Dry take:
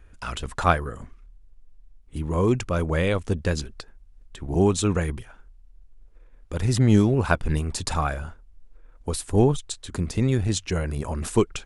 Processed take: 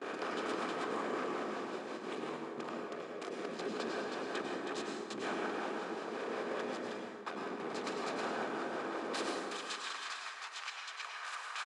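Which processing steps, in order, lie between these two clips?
spectral levelling over time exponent 0.4; saturation -17.5 dBFS, distortion -8 dB; low-pass 3.9 kHz 12 dB/octave; compressor with a negative ratio -26 dBFS, ratio -0.5; peak limiter -20 dBFS, peak gain reduction 6 dB; band-stop 1.4 kHz, Q 11; delay 318 ms -3.5 dB; harmonic tremolo 5.4 Hz, depth 50%, crossover 440 Hz; gate with hold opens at -22 dBFS; high-pass 260 Hz 24 dB/octave, from 9.38 s 1 kHz; plate-style reverb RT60 1.6 s, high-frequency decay 0.55×, pre-delay 85 ms, DRR 0 dB; trim -7 dB

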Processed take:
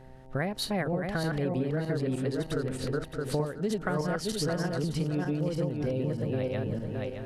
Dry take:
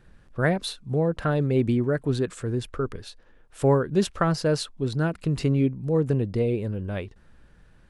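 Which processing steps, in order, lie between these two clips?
backward echo that repeats 336 ms, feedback 49%, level 0 dB; compression 6:1, threshold -27 dBFS, peak gain reduction 15 dB; mains buzz 120 Hz, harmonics 7, -53 dBFS -3 dB/octave; speed mistake 44.1 kHz file played as 48 kHz

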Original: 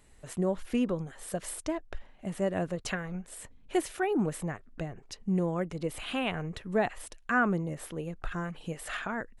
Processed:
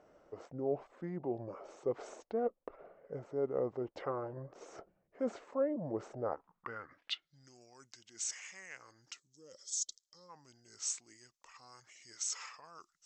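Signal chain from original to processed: time-frequency box 6.61–7.41 s, 820–4300 Hz -20 dB; reverse; compression 4:1, threshold -37 dBFS, peak gain reduction 12.5 dB; reverse; tape speed -28%; band-pass sweep 570 Hz -> 6.3 kHz, 6.23–7.56 s; trim +11.5 dB

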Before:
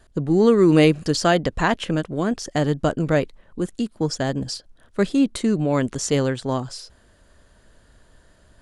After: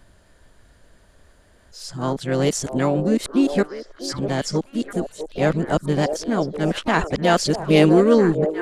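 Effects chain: reverse the whole clip; harmony voices +3 st -15 dB, +5 st -12 dB; repeats whose band climbs or falls 650 ms, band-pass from 550 Hz, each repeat 1.4 oct, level -5 dB

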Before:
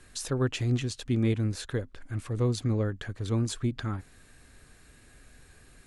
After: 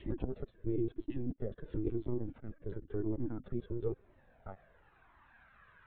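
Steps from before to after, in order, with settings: slices played last to first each 109 ms, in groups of 6; peak limiter -26 dBFS, peak gain reduction 9 dB; band-pass sweep 340 Hz -> 1.2 kHz, 3.55–5.41 s; LPC vocoder at 8 kHz pitch kept; Shepard-style flanger falling 0.97 Hz; trim +10 dB

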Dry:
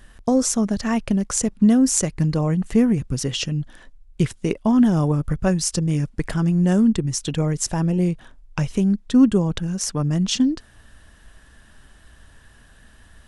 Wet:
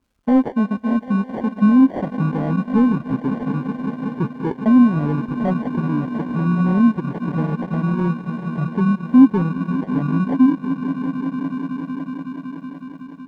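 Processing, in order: local Wiener filter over 41 samples; high-pass 44 Hz; echo with a slow build-up 186 ms, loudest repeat 5, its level -14 dB; in parallel at -1 dB: peak limiter -13.5 dBFS, peak gain reduction 11 dB; on the sum: sample-and-hold 34×; transient shaper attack +1 dB, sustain -8 dB; peaking EQ 270 Hz +3.5 dB 0.33 oct; overdrive pedal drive 17 dB, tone 1.3 kHz, clips at -3 dBFS; crackle 420 per s -31 dBFS; spectral contrast expander 1.5:1

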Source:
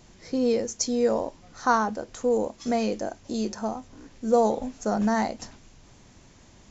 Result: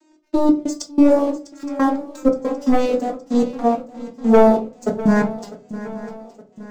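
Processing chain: vocoder on a note that slides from D#4, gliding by -9 st; high-pass 230 Hz 24 dB/octave; treble shelf 6.1 kHz +4.5 dB; waveshaping leveller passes 2; trance gate "x.x.x.xxx" 92 bpm -24 dB; shuffle delay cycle 868 ms, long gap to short 3:1, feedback 46%, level -16 dB; reverberation RT60 0.30 s, pre-delay 3 ms, DRR 1.5 dB; trim +5.5 dB

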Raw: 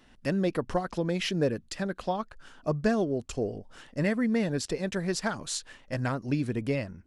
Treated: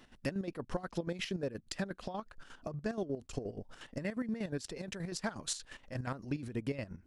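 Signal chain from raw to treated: compression, threshold -33 dBFS, peak gain reduction 12 dB; square tremolo 8.4 Hz, depth 65%, duty 45%; trim +1 dB

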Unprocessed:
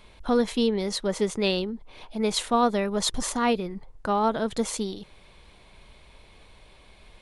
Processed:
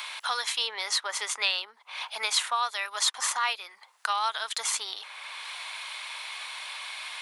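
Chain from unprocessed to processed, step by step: high-pass 1 kHz 24 dB/octave; three bands compressed up and down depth 70%; trim +5 dB

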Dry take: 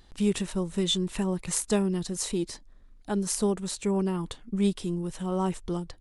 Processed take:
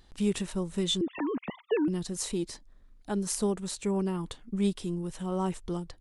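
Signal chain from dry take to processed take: 1.01–1.88 s: formants replaced by sine waves; trim -2.5 dB

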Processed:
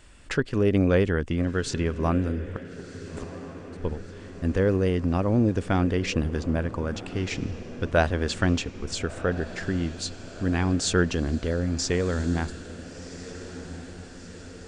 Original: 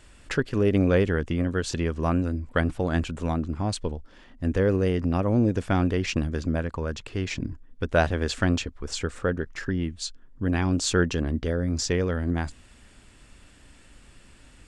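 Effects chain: 2.53–3.79 s: inverted gate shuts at -21 dBFS, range -27 dB; resampled via 22.05 kHz; echo that smears into a reverb 1382 ms, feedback 61%, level -14.5 dB

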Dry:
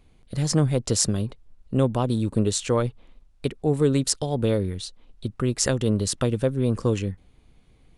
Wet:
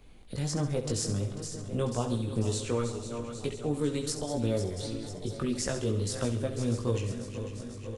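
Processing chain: backward echo that repeats 247 ms, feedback 73%, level -12 dB; chorus voices 6, 0.42 Hz, delay 19 ms, depth 2.5 ms; on a send: feedback delay 68 ms, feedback 49%, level -11 dB; on the sum: three bands compressed up and down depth 40%; trim -5 dB

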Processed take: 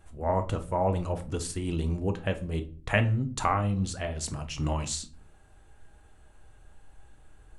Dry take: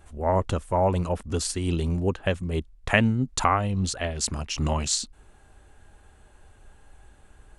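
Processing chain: peaking EQ 99 Hz +5.5 dB 0.48 oct; on a send at -7 dB: reverberation RT60 0.45 s, pre-delay 6 ms; on the sum: dynamic bell 5 kHz, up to -5 dB, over -43 dBFS, Q 1.2; trim -5 dB

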